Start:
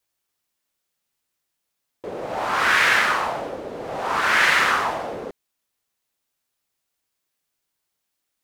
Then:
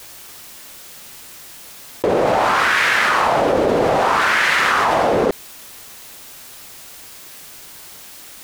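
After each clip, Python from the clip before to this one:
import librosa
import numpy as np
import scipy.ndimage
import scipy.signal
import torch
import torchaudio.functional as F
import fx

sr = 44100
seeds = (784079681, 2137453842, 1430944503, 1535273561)

y = fx.env_flatten(x, sr, amount_pct=100)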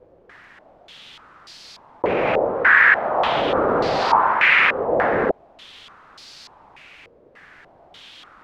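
y = fx.filter_held_lowpass(x, sr, hz=3.4, low_hz=500.0, high_hz=4600.0)
y = F.gain(torch.from_numpy(y), -5.0).numpy()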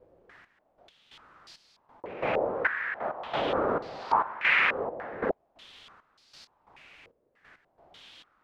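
y = fx.step_gate(x, sr, bpm=135, pattern='xxxx...x..', floor_db=-12.0, edge_ms=4.5)
y = F.gain(torch.from_numpy(y), -8.0).numpy()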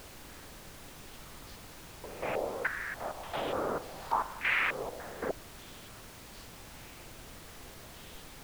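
y = fx.dmg_noise_colour(x, sr, seeds[0], colour='pink', level_db=-43.0)
y = F.gain(torch.from_numpy(y), -6.0).numpy()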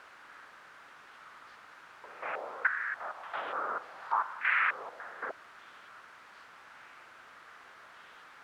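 y = fx.bandpass_q(x, sr, hz=1400.0, q=2.5)
y = F.gain(torch.from_numpy(y), 6.5).numpy()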